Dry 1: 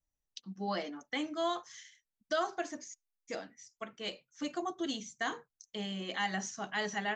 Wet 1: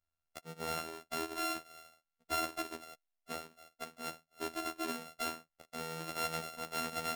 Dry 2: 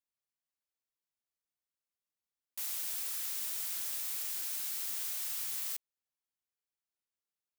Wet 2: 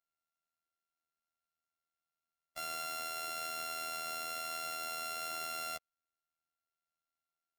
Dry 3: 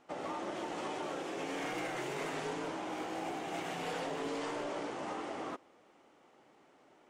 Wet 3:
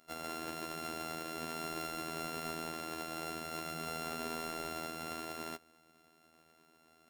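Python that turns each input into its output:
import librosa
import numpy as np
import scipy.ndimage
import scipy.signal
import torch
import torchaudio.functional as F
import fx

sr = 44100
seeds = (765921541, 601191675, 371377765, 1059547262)

y = np.r_[np.sort(x[:len(x) // 64 * 64].reshape(-1, 64), axis=1).ravel(), x[len(x) // 64 * 64:]]
y = fx.robotise(y, sr, hz=81.0)
y = y * librosa.db_to_amplitude(1.0)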